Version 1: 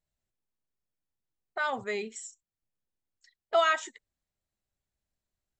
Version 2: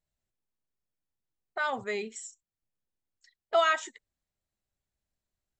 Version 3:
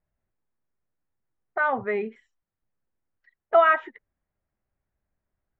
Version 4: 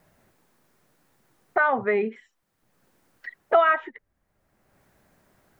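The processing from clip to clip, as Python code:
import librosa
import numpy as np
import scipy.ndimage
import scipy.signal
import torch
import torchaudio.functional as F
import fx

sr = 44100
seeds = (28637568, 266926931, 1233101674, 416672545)

y1 = x
y2 = scipy.signal.sosfilt(scipy.signal.butter(4, 2000.0, 'lowpass', fs=sr, output='sos'), y1)
y2 = y2 * 10.0 ** (7.0 / 20.0)
y3 = fx.band_squash(y2, sr, depth_pct=70)
y3 = y3 * 10.0 ** (3.5 / 20.0)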